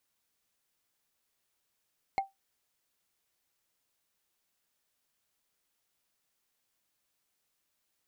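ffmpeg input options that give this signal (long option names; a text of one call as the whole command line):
ffmpeg -f lavfi -i "aevalsrc='0.0794*pow(10,-3*t/0.17)*sin(2*PI*781*t)+0.0316*pow(10,-3*t/0.05)*sin(2*PI*2153.2*t)+0.0126*pow(10,-3*t/0.022)*sin(2*PI*4220.5*t)+0.00501*pow(10,-3*t/0.012)*sin(2*PI*6976.7*t)+0.002*pow(10,-3*t/0.008)*sin(2*PI*10418.5*t)':duration=0.45:sample_rate=44100" out.wav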